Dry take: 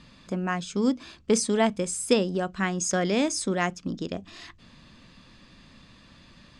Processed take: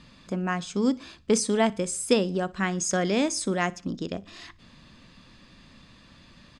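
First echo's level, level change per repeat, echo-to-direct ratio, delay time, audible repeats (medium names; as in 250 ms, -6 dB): -23.0 dB, -7.5 dB, -22.0 dB, 60 ms, 2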